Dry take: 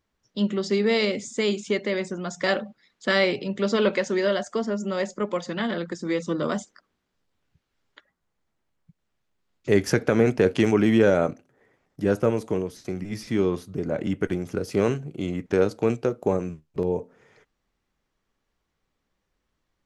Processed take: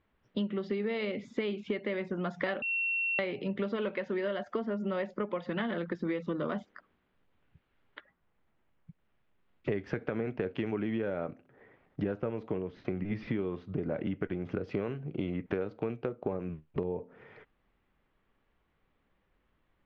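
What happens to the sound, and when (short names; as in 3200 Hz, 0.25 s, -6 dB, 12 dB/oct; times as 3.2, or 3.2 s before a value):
2.62–3.19 bleep 2720 Hz -23.5 dBFS
12.58–13.39 air absorption 89 m
whole clip: LPF 3100 Hz 24 dB/oct; compressor 12:1, threshold -33 dBFS; gain +3.5 dB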